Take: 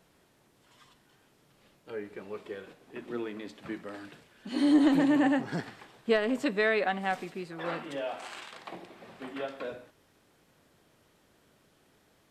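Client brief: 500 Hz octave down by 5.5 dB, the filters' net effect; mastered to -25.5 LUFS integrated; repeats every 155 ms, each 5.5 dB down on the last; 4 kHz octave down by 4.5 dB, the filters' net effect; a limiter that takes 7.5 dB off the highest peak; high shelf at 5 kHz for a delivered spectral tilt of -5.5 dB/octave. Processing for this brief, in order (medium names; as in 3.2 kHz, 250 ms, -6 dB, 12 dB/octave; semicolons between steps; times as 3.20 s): peaking EQ 500 Hz -7 dB; peaking EQ 4 kHz -8.5 dB; treble shelf 5 kHz +5.5 dB; peak limiter -23 dBFS; feedback delay 155 ms, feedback 53%, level -5.5 dB; trim +9 dB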